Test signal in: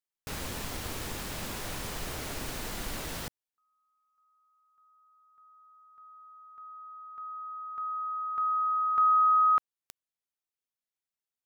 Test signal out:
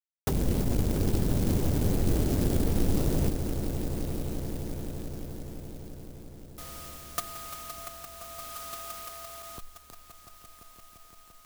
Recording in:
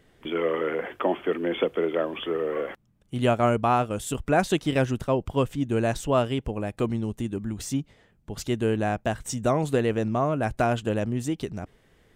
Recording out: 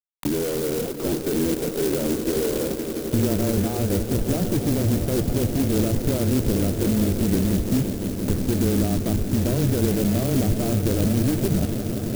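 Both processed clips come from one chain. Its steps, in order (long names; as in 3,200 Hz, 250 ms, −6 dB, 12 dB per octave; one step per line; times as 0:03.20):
fuzz pedal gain 44 dB, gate −44 dBFS
reversed playback
upward compression, threshold −27 dBFS
reversed playback
treble cut that deepens with the level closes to 420 Hz, closed at −16.5 dBFS
frequency shifter −15 Hz
in parallel at −6.5 dB: decimation without filtering 23×
on the sum: echo that builds up and dies away 172 ms, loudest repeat 5, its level −13 dB
converter with an unsteady clock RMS 0.12 ms
level −8 dB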